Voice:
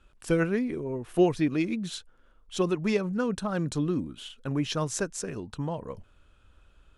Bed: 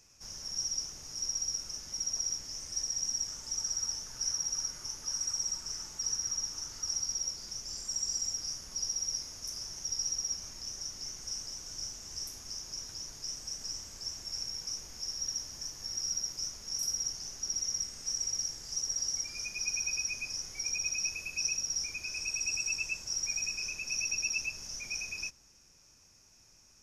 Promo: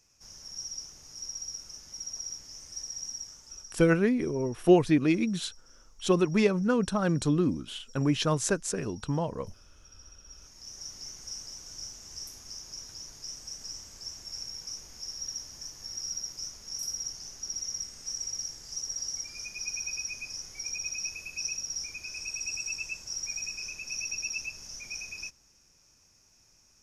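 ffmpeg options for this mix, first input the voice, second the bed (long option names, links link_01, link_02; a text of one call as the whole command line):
ffmpeg -i stem1.wav -i stem2.wav -filter_complex "[0:a]adelay=3500,volume=2.5dB[link_01];[1:a]volume=14.5dB,afade=type=out:start_time=3.06:duration=0.82:silence=0.158489,afade=type=in:start_time=10.25:duration=0.64:silence=0.112202[link_02];[link_01][link_02]amix=inputs=2:normalize=0" out.wav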